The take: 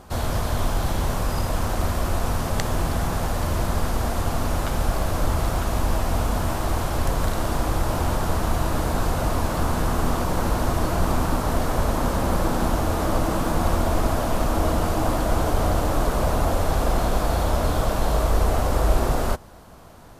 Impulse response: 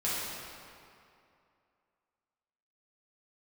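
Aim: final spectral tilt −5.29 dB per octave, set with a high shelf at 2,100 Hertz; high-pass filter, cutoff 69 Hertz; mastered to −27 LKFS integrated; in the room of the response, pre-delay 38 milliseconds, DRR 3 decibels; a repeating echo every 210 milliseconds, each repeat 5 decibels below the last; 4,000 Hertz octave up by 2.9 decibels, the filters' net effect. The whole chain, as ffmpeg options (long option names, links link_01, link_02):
-filter_complex "[0:a]highpass=69,highshelf=frequency=2100:gain=-3,equalizer=frequency=4000:width_type=o:gain=6.5,aecho=1:1:210|420|630|840|1050|1260|1470:0.562|0.315|0.176|0.0988|0.0553|0.031|0.0173,asplit=2[link_01][link_02];[1:a]atrim=start_sample=2205,adelay=38[link_03];[link_02][link_03]afir=irnorm=-1:irlink=0,volume=-11.5dB[link_04];[link_01][link_04]amix=inputs=2:normalize=0,volume=-4.5dB"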